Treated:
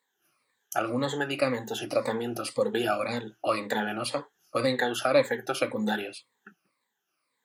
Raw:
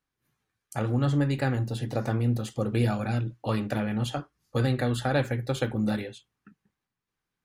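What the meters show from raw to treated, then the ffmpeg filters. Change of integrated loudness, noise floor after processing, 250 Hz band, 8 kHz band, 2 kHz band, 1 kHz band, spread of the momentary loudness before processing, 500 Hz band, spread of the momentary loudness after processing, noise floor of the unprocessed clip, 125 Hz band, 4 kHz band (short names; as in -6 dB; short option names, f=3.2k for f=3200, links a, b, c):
-0.5 dB, -80 dBFS, -4.0 dB, +5.0 dB, +4.5 dB, +4.0 dB, 7 LU, +4.5 dB, 8 LU, under -85 dBFS, -15.0 dB, +5.0 dB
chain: -filter_complex "[0:a]afftfilt=real='re*pow(10,16/40*sin(2*PI*(0.99*log(max(b,1)*sr/1024/100)/log(2)-(-1.9)*(pts-256)/sr)))':imag='im*pow(10,16/40*sin(2*PI*(0.99*log(max(b,1)*sr/1024/100)/log(2)-(-1.9)*(pts-256)/sr)))':win_size=1024:overlap=0.75,highpass=400,asplit=2[a][b];[b]acompressor=threshold=-36dB:ratio=6,volume=-1dB[c];[a][c]amix=inputs=2:normalize=0"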